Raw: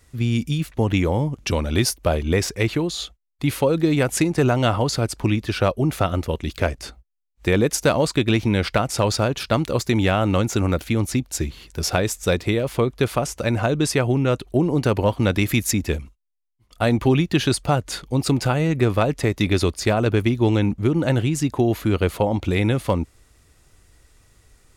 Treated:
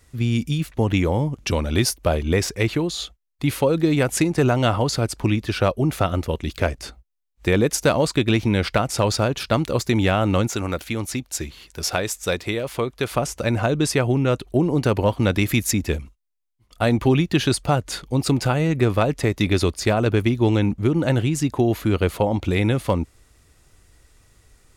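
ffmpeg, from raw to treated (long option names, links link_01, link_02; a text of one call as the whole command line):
ffmpeg -i in.wav -filter_complex "[0:a]asettb=1/sr,asplit=3[link_01][link_02][link_03];[link_01]atrim=end=10.474[link_04];[link_02]atrim=start=10.47:end=13.1,asetpts=PTS-STARTPTS,afade=type=in:duration=0.004:curve=qsin,afade=type=out:start_time=2.626:duration=0.004:curve=qsin,lowshelf=frequency=420:gain=-7.5[link_05];[link_03]atrim=start=13.096[link_06];[link_04][link_05]acrossfade=duration=0.004:curve1=hsin:curve2=qsin[link_07];[link_07][link_06]acrossfade=duration=0.004:curve1=qsin:curve2=hsin" out.wav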